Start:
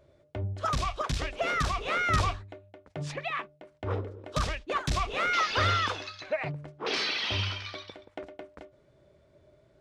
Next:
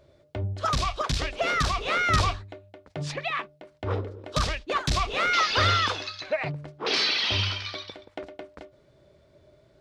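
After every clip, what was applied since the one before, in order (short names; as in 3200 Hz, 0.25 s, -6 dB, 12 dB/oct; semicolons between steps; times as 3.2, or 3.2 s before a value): bell 4400 Hz +5 dB 0.86 oct; gain +3 dB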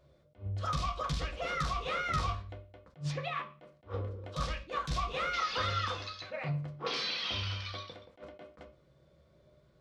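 compressor 2:1, threshold -28 dBFS, peak gain reduction 6.5 dB; on a send at -1 dB: reverb RT60 0.40 s, pre-delay 3 ms; on the sum: attack slew limiter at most 260 dB/s; gain -8.5 dB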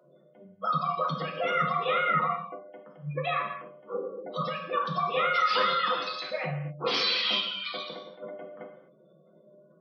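spectral gate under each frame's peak -20 dB strong; steep high-pass 160 Hz 72 dB/oct; non-linear reverb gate 0.28 s falling, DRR 2.5 dB; gain +6.5 dB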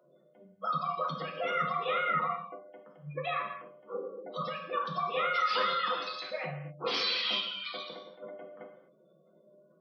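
bell 95 Hz -8 dB 1.2 oct; gain -4 dB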